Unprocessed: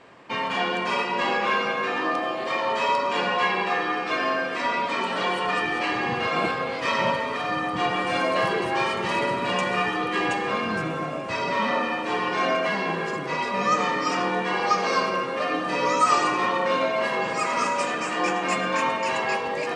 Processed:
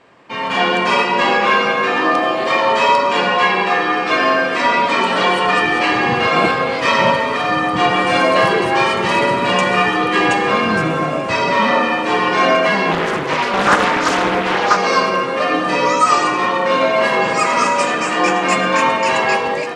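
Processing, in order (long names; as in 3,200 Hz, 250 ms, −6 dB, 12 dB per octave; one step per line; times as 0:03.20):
automatic gain control gain up to 12 dB
0:12.91–0:14.77: highs frequency-modulated by the lows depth 0.55 ms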